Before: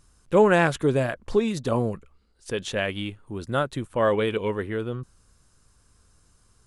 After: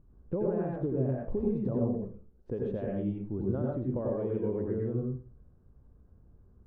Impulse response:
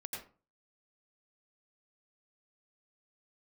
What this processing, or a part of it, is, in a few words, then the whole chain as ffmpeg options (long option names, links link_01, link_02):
television next door: -filter_complex "[0:a]acompressor=threshold=-29dB:ratio=6,lowpass=470[link_01];[1:a]atrim=start_sample=2205[link_02];[link_01][link_02]afir=irnorm=-1:irlink=0,volume=5.5dB"